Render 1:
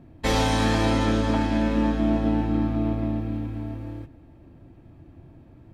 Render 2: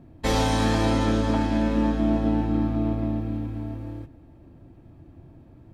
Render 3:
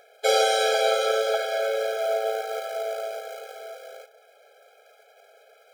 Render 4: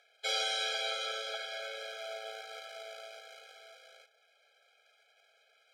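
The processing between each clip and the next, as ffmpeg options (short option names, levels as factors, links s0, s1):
-af "equalizer=f=2300:t=o:w=1.4:g=-3"
-filter_complex "[0:a]acrossover=split=190|1400[s0][s1][s2];[s0]acrusher=bits=3:mode=log:mix=0:aa=0.000001[s3];[s2]acompressor=mode=upward:threshold=0.00141:ratio=2.5[s4];[s3][s1][s4]amix=inputs=3:normalize=0,afftfilt=real='re*eq(mod(floor(b*sr/1024/420),2),1)':imag='im*eq(mod(floor(b*sr/1024/420),2),1)':win_size=1024:overlap=0.75,volume=2.24"
-af "bandpass=f=3300:t=q:w=0.98:csg=0,volume=0.596"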